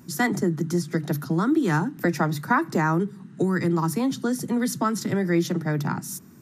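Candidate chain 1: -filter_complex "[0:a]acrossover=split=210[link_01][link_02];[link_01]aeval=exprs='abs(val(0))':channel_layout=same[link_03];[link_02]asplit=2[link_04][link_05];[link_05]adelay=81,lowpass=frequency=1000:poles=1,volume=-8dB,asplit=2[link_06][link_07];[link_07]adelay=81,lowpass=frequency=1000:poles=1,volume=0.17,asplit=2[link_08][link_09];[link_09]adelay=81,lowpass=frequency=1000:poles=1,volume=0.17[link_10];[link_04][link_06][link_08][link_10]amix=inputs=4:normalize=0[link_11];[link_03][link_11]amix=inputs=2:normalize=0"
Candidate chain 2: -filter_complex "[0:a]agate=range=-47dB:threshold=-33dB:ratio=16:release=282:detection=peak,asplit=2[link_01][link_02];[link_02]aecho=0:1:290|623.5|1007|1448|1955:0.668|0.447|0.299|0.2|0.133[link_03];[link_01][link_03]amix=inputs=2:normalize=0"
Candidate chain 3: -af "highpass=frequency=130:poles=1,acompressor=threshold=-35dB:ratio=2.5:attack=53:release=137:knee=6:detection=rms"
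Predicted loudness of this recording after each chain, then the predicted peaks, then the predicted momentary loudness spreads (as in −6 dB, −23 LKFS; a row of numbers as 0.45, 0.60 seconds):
−27.0, −22.5, −33.5 LKFS; −9.5, −6.5, −18.0 dBFS; 7, 4, 3 LU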